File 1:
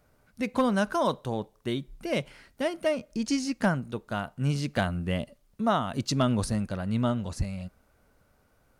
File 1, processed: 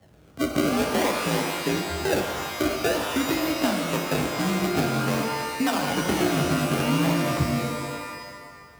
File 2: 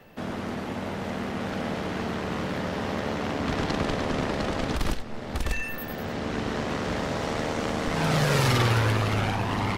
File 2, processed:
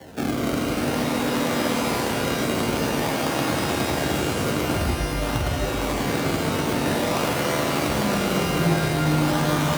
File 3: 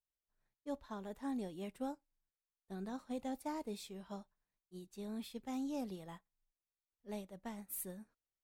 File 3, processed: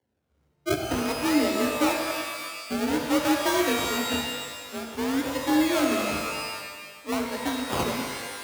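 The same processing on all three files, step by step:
downward compressor, threshold −31 dBFS
sample-and-hold swept by an LFO 35×, swing 100% 0.5 Hz
frequency shifter +47 Hz
reverb with rising layers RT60 1.5 s, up +12 semitones, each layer −2 dB, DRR 3.5 dB
normalise the peak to −9 dBFS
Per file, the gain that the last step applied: +8.5, +8.5, +16.0 decibels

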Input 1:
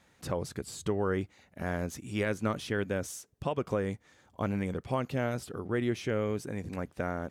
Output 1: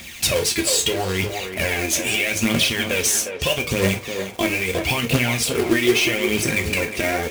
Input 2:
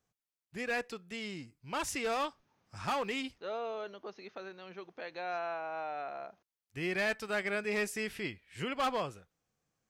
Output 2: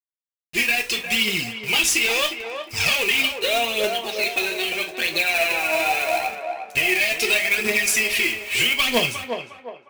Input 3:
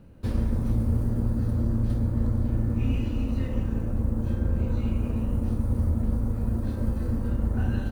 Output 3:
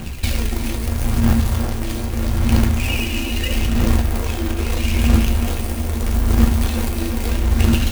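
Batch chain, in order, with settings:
high shelf with overshoot 1,800 Hz +10.5 dB, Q 3
hum removal 52.48 Hz, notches 2
brickwall limiter −19.5 dBFS
downward compressor 6 to 1, threshold −34 dBFS
phase shifter 0.78 Hz, delay 3.3 ms, feedback 69%
log-companded quantiser 4 bits
on a send: feedback echo with a band-pass in the loop 357 ms, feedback 45%, band-pass 670 Hz, level −4.5 dB
on the sum: reverb whose tail is shaped and stops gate 90 ms falling, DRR 4 dB
loudness normalisation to −20 LKFS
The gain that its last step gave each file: +13.0, +12.5, +12.0 decibels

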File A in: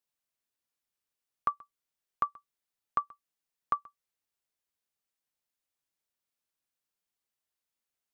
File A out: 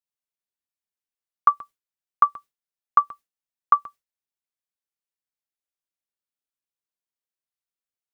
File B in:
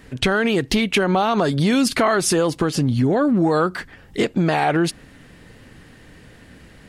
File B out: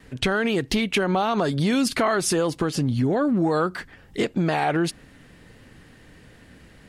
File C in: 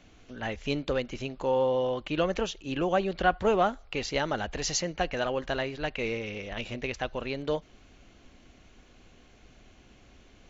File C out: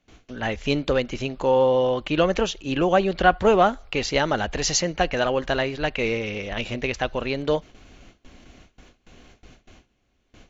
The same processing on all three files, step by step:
noise gate with hold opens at −45 dBFS
loudness normalisation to −23 LKFS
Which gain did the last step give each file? +13.0, −4.0, +7.0 decibels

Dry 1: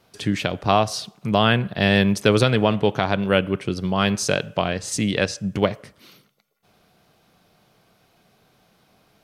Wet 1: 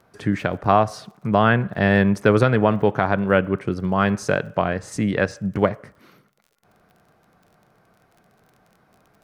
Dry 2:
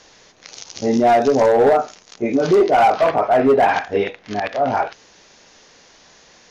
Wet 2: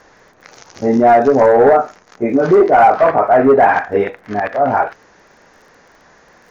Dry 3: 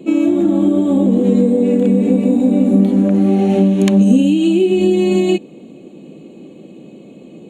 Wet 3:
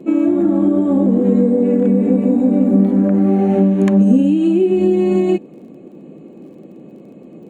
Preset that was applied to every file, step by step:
high shelf with overshoot 2,300 Hz −10 dB, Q 1.5
surface crackle 32 per second −43 dBFS
normalise the peak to −2 dBFS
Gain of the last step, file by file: +1.0, +3.5, −1.0 decibels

